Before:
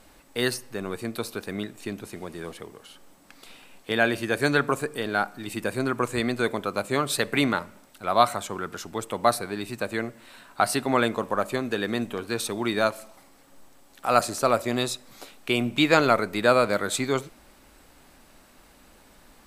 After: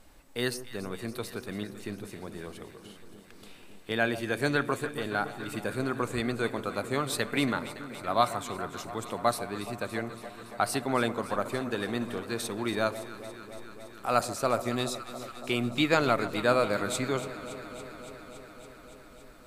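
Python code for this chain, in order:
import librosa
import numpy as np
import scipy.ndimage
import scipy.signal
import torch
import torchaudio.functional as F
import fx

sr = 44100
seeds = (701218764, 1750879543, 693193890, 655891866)

y = fx.low_shelf(x, sr, hz=89.0, db=8.0)
y = fx.echo_alternate(y, sr, ms=141, hz=1100.0, feedback_pct=88, wet_db=-13.0)
y = y * librosa.db_to_amplitude(-5.5)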